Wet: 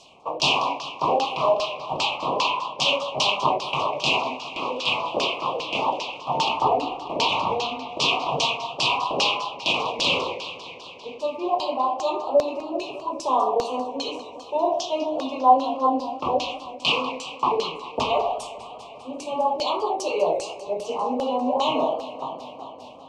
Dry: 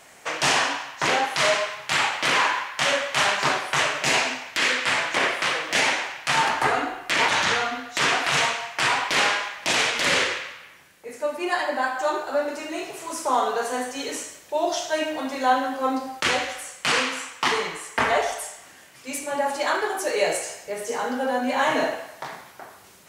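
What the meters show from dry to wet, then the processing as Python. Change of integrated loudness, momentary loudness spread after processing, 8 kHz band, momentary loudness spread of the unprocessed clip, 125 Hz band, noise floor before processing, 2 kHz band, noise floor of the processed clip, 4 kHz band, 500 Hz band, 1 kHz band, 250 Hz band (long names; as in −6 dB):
−1.0 dB, 10 LU, −9.0 dB, 11 LU, +0.5 dB, −49 dBFS, −8.0 dB, −41 dBFS, +0.5 dB, +2.0 dB, +2.0 dB, +0.5 dB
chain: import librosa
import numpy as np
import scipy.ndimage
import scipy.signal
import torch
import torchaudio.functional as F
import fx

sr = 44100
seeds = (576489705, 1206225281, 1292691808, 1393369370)

y = scipy.signal.sosfilt(scipy.signal.ellip(3, 1.0, 50, [1100.0, 2600.0], 'bandstop', fs=sr, output='sos'), x)
y = fx.filter_lfo_lowpass(y, sr, shape='saw_down', hz=2.5, low_hz=510.0, high_hz=5500.0, q=2.3)
y = fx.echo_warbled(y, sr, ms=199, feedback_pct=78, rate_hz=2.8, cents=122, wet_db=-16.5)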